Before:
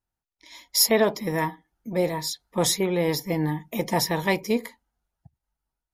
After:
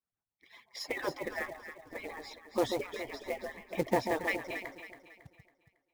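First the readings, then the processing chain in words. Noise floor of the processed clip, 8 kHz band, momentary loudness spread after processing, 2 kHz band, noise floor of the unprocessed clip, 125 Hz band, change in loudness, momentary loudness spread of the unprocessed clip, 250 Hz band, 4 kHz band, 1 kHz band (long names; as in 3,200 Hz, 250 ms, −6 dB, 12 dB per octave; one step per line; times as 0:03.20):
below −85 dBFS, −22.5 dB, 16 LU, −6.0 dB, below −85 dBFS, −17.5 dB, −12.0 dB, 10 LU, −12.5 dB, −17.0 dB, −8.5 dB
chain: harmonic-percussive split with one part muted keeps percussive
Chebyshev low-pass filter 1,900 Hz, order 2
dynamic equaliser 1,100 Hz, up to −5 dB, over −45 dBFS, Q 1.3
delay that swaps between a low-pass and a high-pass 138 ms, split 960 Hz, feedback 63%, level −5 dB
floating-point word with a short mantissa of 2 bits
level −2 dB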